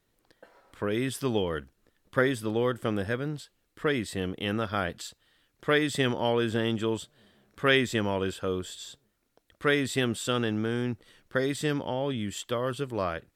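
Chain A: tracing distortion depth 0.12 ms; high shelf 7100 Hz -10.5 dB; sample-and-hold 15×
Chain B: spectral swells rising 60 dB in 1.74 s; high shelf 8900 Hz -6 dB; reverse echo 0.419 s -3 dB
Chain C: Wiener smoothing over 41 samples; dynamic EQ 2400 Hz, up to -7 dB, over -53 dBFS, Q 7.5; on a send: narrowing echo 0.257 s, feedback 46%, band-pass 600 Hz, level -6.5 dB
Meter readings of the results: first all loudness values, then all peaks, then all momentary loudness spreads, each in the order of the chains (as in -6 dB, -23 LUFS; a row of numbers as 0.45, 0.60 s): -29.5, -24.5, -30.0 LUFS; -10.0, -3.5, -9.0 dBFS; 9, 7, 13 LU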